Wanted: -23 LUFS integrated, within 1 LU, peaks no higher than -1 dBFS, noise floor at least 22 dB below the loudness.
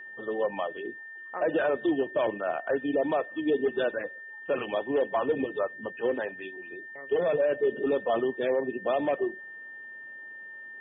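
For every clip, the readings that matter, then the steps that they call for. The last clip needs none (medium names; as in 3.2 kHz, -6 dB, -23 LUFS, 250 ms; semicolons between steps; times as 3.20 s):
steady tone 1.8 kHz; tone level -41 dBFS; loudness -29.0 LUFS; peak level -17.0 dBFS; loudness target -23.0 LUFS
-> band-stop 1.8 kHz, Q 30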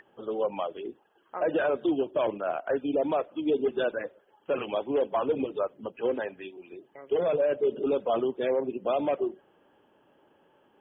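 steady tone not found; loudness -29.0 LUFS; peak level -17.0 dBFS; loudness target -23.0 LUFS
-> trim +6 dB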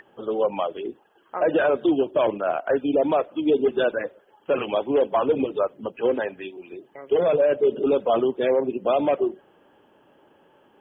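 loudness -23.0 LUFS; peak level -11.0 dBFS; noise floor -60 dBFS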